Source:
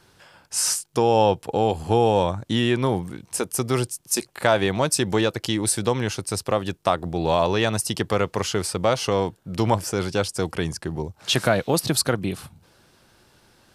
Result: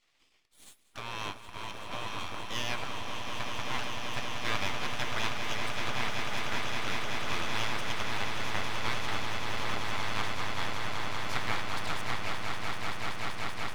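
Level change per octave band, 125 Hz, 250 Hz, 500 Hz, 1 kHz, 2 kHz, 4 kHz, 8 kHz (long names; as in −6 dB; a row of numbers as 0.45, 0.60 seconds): −14.5, −17.5, −19.5, −9.5, −2.5, −6.5, −17.0 decibels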